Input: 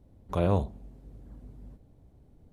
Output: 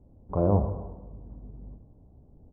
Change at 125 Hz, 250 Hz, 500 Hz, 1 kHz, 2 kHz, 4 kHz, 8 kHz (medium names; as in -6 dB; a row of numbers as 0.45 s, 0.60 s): +3.0 dB, +3.0 dB, +2.5 dB, +1.0 dB, under -10 dB, under -30 dB, no reading